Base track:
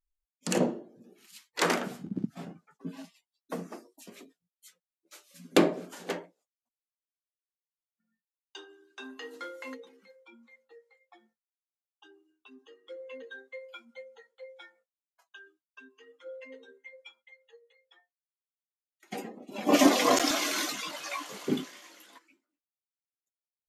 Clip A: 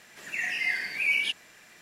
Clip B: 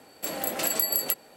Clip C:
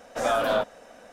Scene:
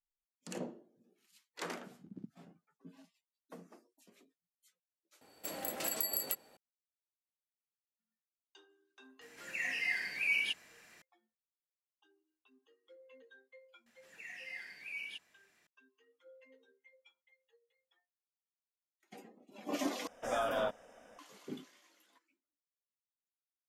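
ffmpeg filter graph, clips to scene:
-filter_complex "[1:a]asplit=2[s0][s1];[0:a]volume=0.168[s2];[s0]bandreject=f=3500:w=15[s3];[3:a]asuperstop=centerf=4200:order=8:qfactor=4.2[s4];[s2]asplit=3[s5][s6][s7];[s5]atrim=end=5.214[s8];[2:a]atrim=end=1.36,asetpts=PTS-STARTPTS,volume=0.316[s9];[s6]atrim=start=6.566:end=20.074[s10];[s4]atrim=end=1.12,asetpts=PTS-STARTPTS,volume=0.316[s11];[s7]atrim=start=21.186[s12];[s3]atrim=end=1.81,asetpts=PTS-STARTPTS,volume=0.473,afade=t=in:d=0.004:c=hsin,afade=t=out:st=1.806:d=0.004:c=hsin,adelay=9210[s13];[s1]atrim=end=1.81,asetpts=PTS-STARTPTS,volume=0.126,afade=t=in:d=0.004:c=hsin,afade=t=out:st=1.806:d=0.004:c=hsin,adelay=13860[s14];[s8][s9]acrossfade=d=0.004:c1=hsin:c2=hsin[s15];[s15][s10]acrossfade=d=0.004:c1=hsin:c2=hsin[s16];[s16][s11]acrossfade=d=0.004:c1=hsin:c2=hsin[s17];[s17][s12]acrossfade=d=0.004:c1=hsin:c2=hsin[s18];[s18][s13][s14]amix=inputs=3:normalize=0"

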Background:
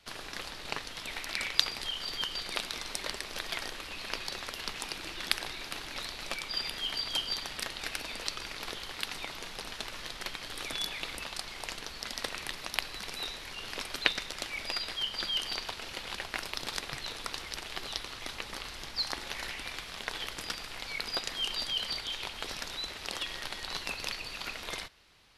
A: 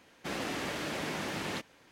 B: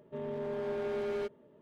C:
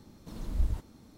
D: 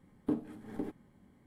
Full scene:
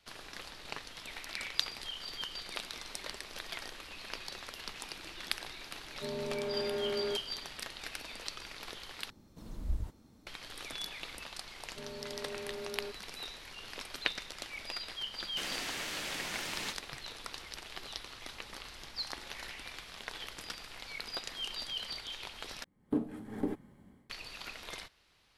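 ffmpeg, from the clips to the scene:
-filter_complex "[2:a]asplit=2[s0][s1];[0:a]volume=0.501[s2];[1:a]tiltshelf=f=1400:g=-7.5[s3];[4:a]dynaudnorm=f=110:g=5:m=6.31[s4];[s2]asplit=3[s5][s6][s7];[s5]atrim=end=9.104[s8];[3:a]atrim=end=1.17,asetpts=PTS-STARTPTS,volume=0.501[s9];[s6]atrim=start=10.266:end=22.644[s10];[s4]atrim=end=1.46,asetpts=PTS-STARTPTS,volume=0.251[s11];[s7]atrim=start=24.096[s12];[s0]atrim=end=1.61,asetpts=PTS-STARTPTS,volume=0.944,afade=t=in:d=0.004:c=hsin,afade=t=out:st=1.606:d=0.004:c=hsin,adelay=259749S[s13];[s1]atrim=end=1.61,asetpts=PTS-STARTPTS,volume=0.398,afade=t=in:d=0.004:c=hsin,afade=t=out:st=1.606:d=0.004:c=hsin,adelay=11640[s14];[s3]atrim=end=1.91,asetpts=PTS-STARTPTS,volume=0.631,afade=t=in:d=0.004:c=hsin,afade=t=out:st=1.906:d=0.004:c=hsin,adelay=15120[s15];[s8][s9]acrossfade=d=0.004:c1=hsin:c2=hsin[s16];[s16][s10]acrossfade=d=0.004:c1=hsin:c2=hsin[s17];[s17][s11]acrossfade=d=0.004:c1=hsin:c2=hsin[s18];[s18][s12]acrossfade=d=0.004:c1=hsin:c2=hsin[s19];[s19][s13][s14][s15]amix=inputs=4:normalize=0"

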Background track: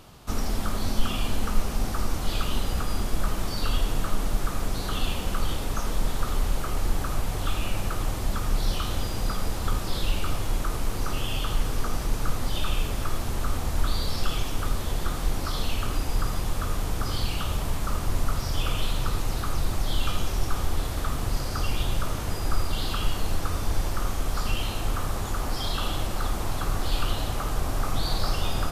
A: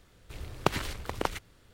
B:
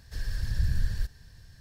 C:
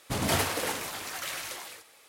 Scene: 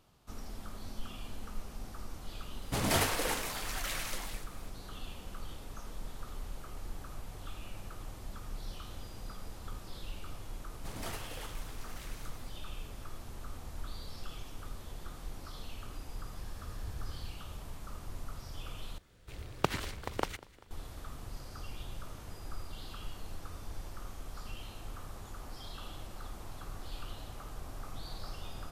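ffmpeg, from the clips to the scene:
-filter_complex "[3:a]asplit=2[s0][s1];[0:a]volume=0.141[s2];[1:a]aecho=1:1:196|392|588|784:0.0841|0.0471|0.0264|0.0148[s3];[s2]asplit=2[s4][s5];[s4]atrim=end=18.984[s6];[s3]atrim=end=1.73,asetpts=PTS-STARTPTS,volume=0.668[s7];[s5]atrim=start=20.706[s8];[s0]atrim=end=2.08,asetpts=PTS-STARTPTS,volume=0.75,afade=t=in:d=0.004:c=hsin,afade=t=out:st=2.076:d=0.004:c=hsin,adelay=2620[s9];[s1]atrim=end=2.08,asetpts=PTS-STARTPTS,volume=0.158,afade=t=in:d=0.004:c=hsin,afade=t=out:st=2.076:d=0.004:c=hsin,adelay=473634S[s10];[2:a]atrim=end=1.6,asetpts=PTS-STARTPTS,volume=0.168,afade=t=in:d=0.004:c=hsin,afade=t=out:st=1.596:d=0.004:c=hsin,adelay=16250[s11];[s6][s7]acrossfade=d=0.004:c1=hsin:c2=hsin[s12];[s12][s8]acrossfade=d=0.004:c1=hsin:c2=hsin[s13];[s13][s9][s10][s11]amix=inputs=4:normalize=0"

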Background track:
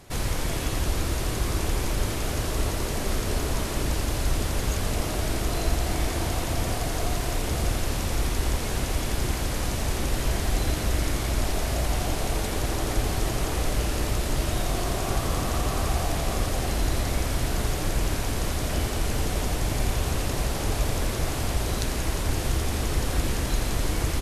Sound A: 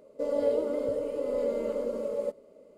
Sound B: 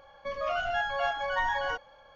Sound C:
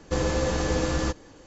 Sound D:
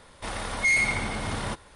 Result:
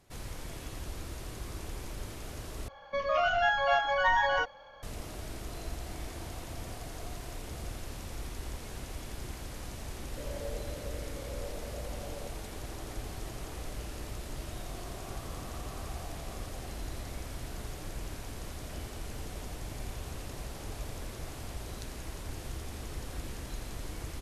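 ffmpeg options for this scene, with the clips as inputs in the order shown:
-filter_complex "[0:a]volume=0.188[s0];[2:a]acontrast=54[s1];[s0]asplit=2[s2][s3];[s2]atrim=end=2.684[s4];[s1]atrim=end=2.15,asetpts=PTS-STARTPTS,volume=0.708[s5];[s3]atrim=start=4.826[s6];[1:a]atrim=end=2.77,asetpts=PTS-STARTPTS,volume=0.178,afade=t=in:d=0.004:c=hsin,afade=t=out:st=2.766:d=0.004:c=hsin,adelay=9980[s7];[s4][s5]acrossfade=d=0.004:c1=hsin:c2=hsin[s8];[s8][s6]acrossfade=d=0.004:c1=hsin:c2=hsin[s9];[s9][s7]amix=inputs=2:normalize=0"

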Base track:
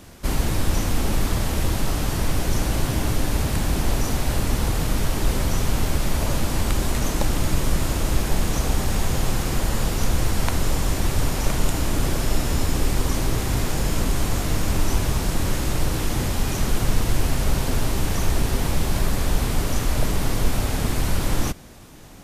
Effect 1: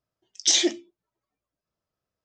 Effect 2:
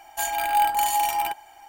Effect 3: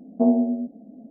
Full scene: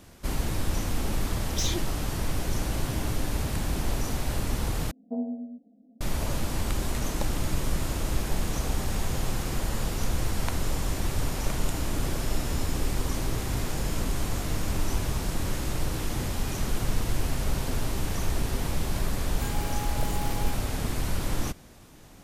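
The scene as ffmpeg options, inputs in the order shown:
-filter_complex "[0:a]volume=0.473[s0];[1:a]asoftclip=type=tanh:threshold=0.178[s1];[3:a]aecho=1:1:4.1:0.79[s2];[2:a]acompressor=threshold=0.0794:ratio=6:attack=3.2:release=140:knee=1:detection=peak[s3];[s0]asplit=2[s4][s5];[s4]atrim=end=4.914[s6];[s2]atrim=end=1.1,asetpts=PTS-STARTPTS,volume=0.133[s7];[s5]atrim=start=6.006[s8];[s1]atrim=end=2.24,asetpts=PTS-STARTPTS,volume=0.335,afade=t=in:d=0.004:c=hsin,afade=t=out:st=2.236:d=0.004:c=hsin,adelay=1110[s9];[s3]atrim=end=1.68,asetpts=PTS-STARTPTS,volume=0.211,afade=t=in:d=0.004:c=hsin,afade=t=out:st=1.676:d=0.004:c=hsin,adelay=19220[s10];[s6][s7]acrossfade=d=0.004:c1=hsin:c2=hsin[s11];[s11][s8]acrossfade=d=0.004:c1=hsin:c2=hsin[s12];[s12][s9][s10]amix=inputs=3:normalize=0"

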